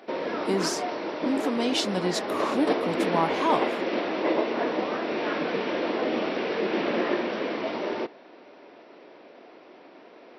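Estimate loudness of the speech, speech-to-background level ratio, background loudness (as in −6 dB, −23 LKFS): −28.5 LKFS, 0.0 dB, −28.5 LKFS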